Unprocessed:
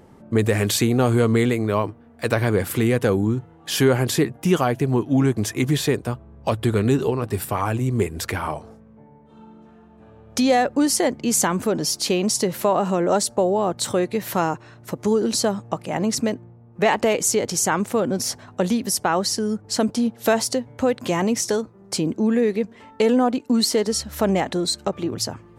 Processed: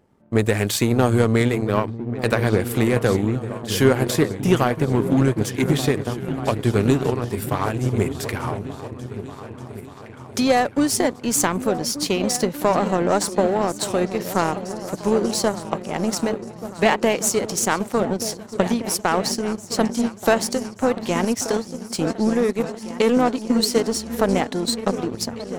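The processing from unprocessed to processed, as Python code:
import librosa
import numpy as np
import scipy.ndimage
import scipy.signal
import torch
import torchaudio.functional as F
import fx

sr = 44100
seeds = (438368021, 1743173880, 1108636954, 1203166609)

y = fx.echo_opening(x, sr, ms=590, hz=200, octaves=2, feedback_pct=70, wet_db=-6)
y = fx.power_curve(y, sr, exponent=1.4)
y = F.gain(torch.from_numpy(y), 3.5).numpy()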